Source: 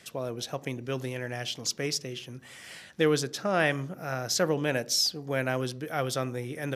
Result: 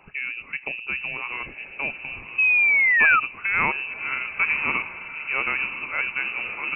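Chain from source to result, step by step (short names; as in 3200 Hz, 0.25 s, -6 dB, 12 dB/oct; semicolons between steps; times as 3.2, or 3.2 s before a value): diffused feedback echo 1.057 s, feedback 51%, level -10 dB; painted sound rise, 2.38–3.2, 230–1600 Hz -21 dBFS; inverted band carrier 2800 Hz; gain +3 dB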